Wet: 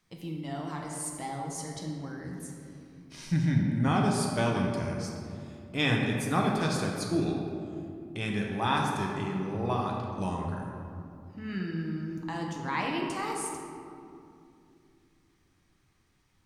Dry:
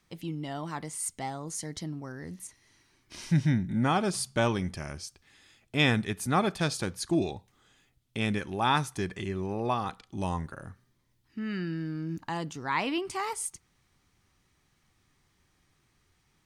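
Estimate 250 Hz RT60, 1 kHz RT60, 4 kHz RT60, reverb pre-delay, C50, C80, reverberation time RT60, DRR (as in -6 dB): 3.7 s, 2.4 s, 1.2 s, 6 ms, 2.0 dB, 3.0 dB, 2.6 s, -1.0 dB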